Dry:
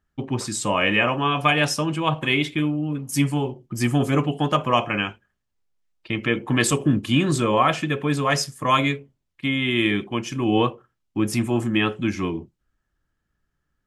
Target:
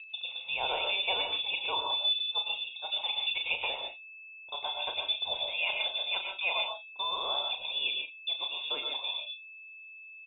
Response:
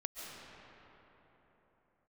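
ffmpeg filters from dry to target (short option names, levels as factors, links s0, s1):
-filter_complex "[0:a]acrossover=split=560|910[s0][s1][s2];[s0]acompressor=threshold=0.0224:ratio=5[s3];[s3][s1][s2]amix=inputs=3:normalize=0,asplit=3[s4][s5][s6];[s4]bandpass=f=300:t=q:w=8,volume=1[s7];[s5]bandpass=f=870:t=q:w=8,volume=0.501[s8];[s6]bandpass=f=2240:t=q:w=8,volume=0.355[s9];[s7][s8][s9]amix=inputs=3:normalize=0,aeval=exprs='val(0)+0.00501*sin(2*PI*950*n/s)':c=same,asplit=2[s10][s11];[s11]adelay=49,volume=0.376[s12];[s10][s12]amix=inputs=2:normalize=0[s13];[1:a]atrim=start_sample=2205,afade=t=out:st=0.27:d=0.01,atrim=end_sample=12348[s14];[s13][s14]afir=irnorm=-1:irlink=0,asetrate=59535,aresample=44100,lowpass=f=3300:t=q:w=0.5098,lowpass=f=3300:t=q:w=0.6013,lowpass=f=3300:t=q:w=0.9,lowpass=f=3300:t=q:w=2.563,afreqshift=-3900,volume=2.37"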